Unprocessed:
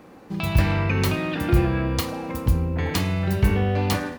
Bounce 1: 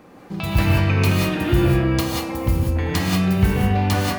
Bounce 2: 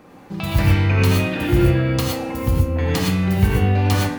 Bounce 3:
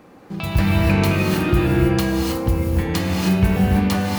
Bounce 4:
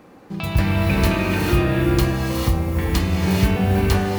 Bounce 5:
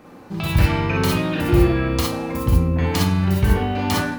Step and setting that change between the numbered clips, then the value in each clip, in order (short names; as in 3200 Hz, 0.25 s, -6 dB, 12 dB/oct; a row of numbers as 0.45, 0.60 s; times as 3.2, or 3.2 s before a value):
non-linear reverb, gate: 210, 140, 340, 500, 80 ms